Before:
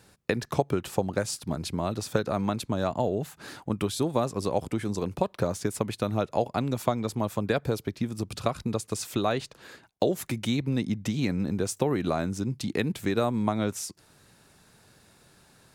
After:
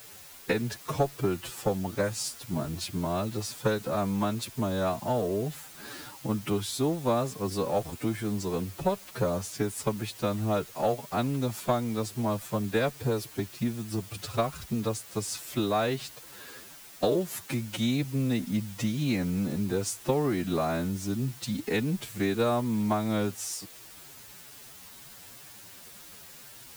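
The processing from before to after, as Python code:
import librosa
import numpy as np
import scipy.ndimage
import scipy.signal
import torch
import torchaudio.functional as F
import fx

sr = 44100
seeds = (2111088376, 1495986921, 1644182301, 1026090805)

y = fx.diode_clip(x, sr, knee_db=-10.5)
y = fx.quant_dither(y, sr, seeds[0], bits=8, dither='triangular')
y = fx.stretch_vocoder(y, sr, factor=1.7)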